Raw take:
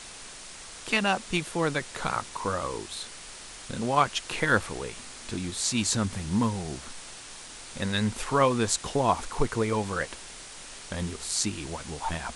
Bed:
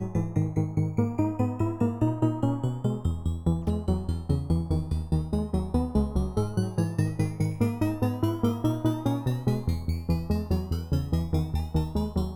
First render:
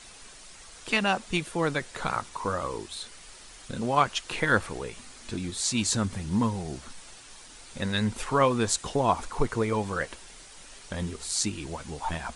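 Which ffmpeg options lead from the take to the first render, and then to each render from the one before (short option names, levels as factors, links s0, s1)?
-af "afftdn=nr=7:nf=-44"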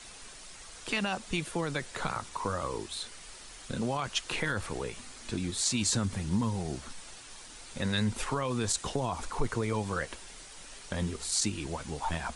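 -filter_complex "[0:a]alimiter=limit=0.133:level=0:latency=1:release=19,acrossover=split=150|3000[s0][s1][s2];[s1]acompressor=threshold=0.0355:ratio=6[s3];[s0][s3][s2]amix=inputs=3:normalize=0"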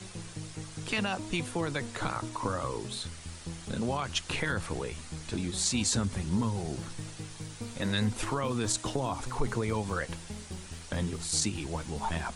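-filter_complex "[1:a]volume=0.168[s0];[0:a][s0]amix=inputs=2:normalize=0"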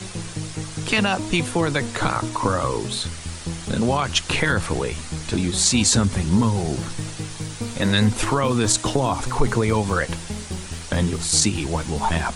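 -af "volume=3.55"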